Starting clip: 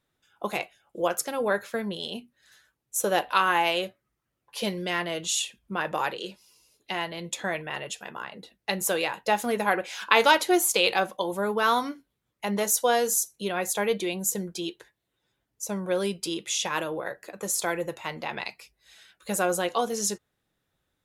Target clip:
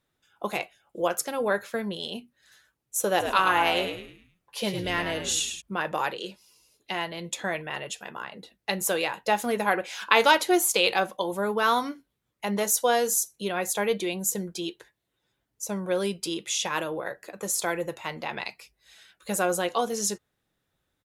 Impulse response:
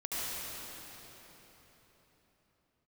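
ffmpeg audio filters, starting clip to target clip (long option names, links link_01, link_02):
-filter_complex "[0:a]asplit=3[link_01][link_02][link_03];[link_01]afade=type=out:start_time=3.19:duration=0.02[link_04];[link_02]asplit=6[link_05][link_06][link_07][link_08][link_09][link_10];[link_06]adelay=105,afreqshift=-78,volume=-7dB[link_11];[link_07]adelay=210,afreqshift=-156,volume=-15.2dB[link_12];[link_08]adelay=315,afreqshift=-234,volume=-23.4dB[link_13];[link_09]adelay=420,afreqshift=-312,volume=-31.5dB[link_14];[link_10]adelay=525,afreqshift=-390,volume=-39.7dB[link_15];[link_05][link_11][link_12][link_13][link_14][link_15]amix=inputs=6:normalize=0,afade=type=in:start_time=3.19:duration=0.02,afade=type=out:start_time=5.6:duration=0.02[link_16];[link_03]afade=type=in:start_time=5.6:duration=0.02[link_17];[link_04][link_16][link_17]amix=inputs=3:normalize=0"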